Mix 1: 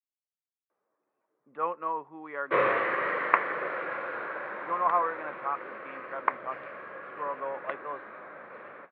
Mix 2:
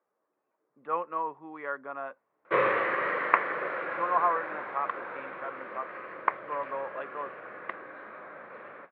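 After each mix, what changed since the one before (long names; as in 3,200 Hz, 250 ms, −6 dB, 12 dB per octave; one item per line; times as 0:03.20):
speech: entry −0.70 s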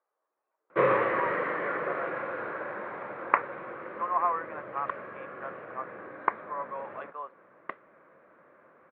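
speech: add high-pass filter 750 Hz 12 dB per octave
first sound: entry −1.75 s
master: add spectral tilt −2.5 dB per octave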